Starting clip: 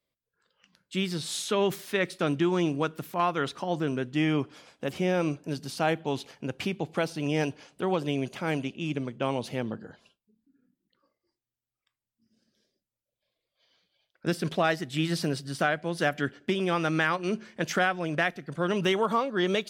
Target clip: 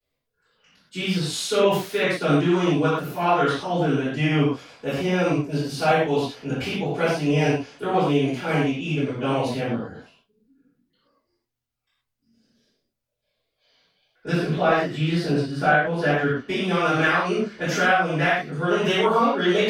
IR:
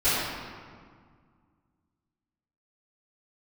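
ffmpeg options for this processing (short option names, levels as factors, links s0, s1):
-filter_complex "[0:a]asettb=1/sr,asplit=3[s0][s1][s2];[s0]atrim=end=14.314[s3];[s1]atrim=start=14.31:end=16.37,asetpts=PTS-STARTPTS,afade=t=in:d=0.004:c=qsin,afade=t=out:st=2.056:d=0.004:c=qsin,highshelf=f=4300:g=-12[s4];[s2]atrim=start=16.366[s5];[s3][s4]acrossfade=d=0.004:c1=hsin:c2=qsin[s6];[s6][s5]acrossfade=d=0.004:c1=qsin:c2=hsin[s7];[1:a]atrim=start_sample=2205,atrim=end_sample=6174[s8];[s7][s8]afir=irnorm=-1:irlink=0,flanger=delay=8.5:depth=5.9:regen=-67:speed=1.9:shape=sinusoidal,volume=0.708"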